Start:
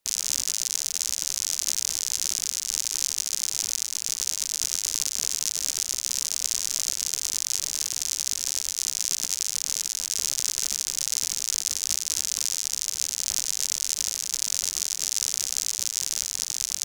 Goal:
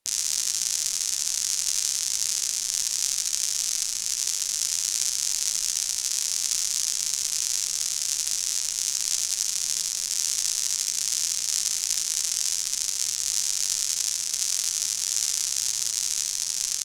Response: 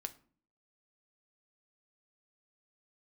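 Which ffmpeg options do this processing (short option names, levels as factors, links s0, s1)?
-filter_complex "[0:a]aecho=1:1:72:0.631[s0];[1:a]atrim=start_sample=2205,asetrate=22932,aresample=44100[s1];[s0][s1]afir=irnorm=-1:irlink=0,volume=0.891"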